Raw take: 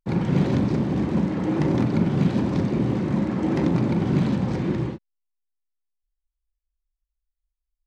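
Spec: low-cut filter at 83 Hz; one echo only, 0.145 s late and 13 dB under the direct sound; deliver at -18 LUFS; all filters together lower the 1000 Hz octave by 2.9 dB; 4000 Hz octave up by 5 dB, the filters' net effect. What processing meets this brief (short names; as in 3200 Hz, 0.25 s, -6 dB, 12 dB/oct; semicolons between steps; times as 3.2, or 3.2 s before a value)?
HPF 83 Hz; bell 1000 Hz -4 dB; bell 4000 Hz +6.5 dB; echo 0.145 s -13 dB; gain +5 dB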